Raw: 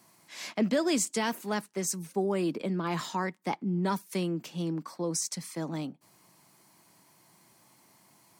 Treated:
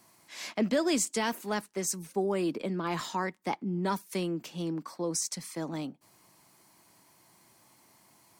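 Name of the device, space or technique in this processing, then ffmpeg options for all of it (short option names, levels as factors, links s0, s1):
low shelf boost with a cut just above: -af "lowshelf=f=84:g=7,equalizer=f=160:t=o:w=0.88:g=-5"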